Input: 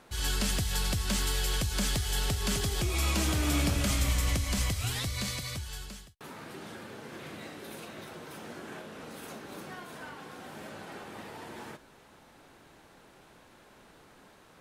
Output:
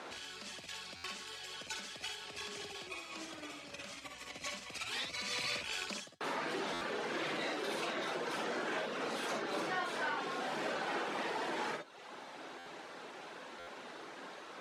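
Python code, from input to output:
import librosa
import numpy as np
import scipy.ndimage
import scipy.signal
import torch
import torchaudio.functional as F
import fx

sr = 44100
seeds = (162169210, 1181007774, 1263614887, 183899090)

y = fx.rattle_buzz(x, sr, strikes_db=-40.0, level_db=-28.0)
y = fx.dereverb_blind(y, sr, rt60_s=1.0)
y = fx.over_compress(y, sr, threshold_db=-42.0, ratio=-1.0)
y = 10.0 ** (-34.5 / 20.0) * np.tanh(y / 10.0 ** (-34.5 / 20.0))
y = fx.bandpass_edges(y, sr, low_hz=330.0, high_hz=5800.0)
y = fx.room_early_taps(y, sr, ms=(53, 65), db=(-6.0, -7.5))
y = fx.buffer_glitch(y, sr, at_s=(0.96, 6.73, 12.58, 13.59), block=512, repeats=6)
y = y * 10.0 ** (4.0 / 20.0)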